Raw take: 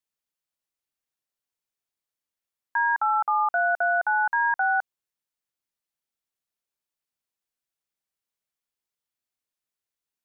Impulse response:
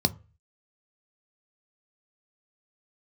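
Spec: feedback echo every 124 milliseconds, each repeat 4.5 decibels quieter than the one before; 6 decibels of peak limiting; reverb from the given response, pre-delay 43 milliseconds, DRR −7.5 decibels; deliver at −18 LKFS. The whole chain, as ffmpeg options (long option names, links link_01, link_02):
-filter_complex "[0:a]alimiter=limit=-22.5dB:level=0:latency=1,aecho=1:1:124|248|372|496|620|744|868|992|1116:0.596|0.357|0.214|0.129|0.0772|0.0463|0.0278|0.0167|0.01,asplit=2[link_01][link_02];[1:a]atrim=start_sample=2205,adelay=43[link_03];[link_02][link_03]afir=irnorm=-1:irlink=0,volume=-2dB[link_04];[link_01][link_04]amix=inputs=2:normalize=0,volume=2dB"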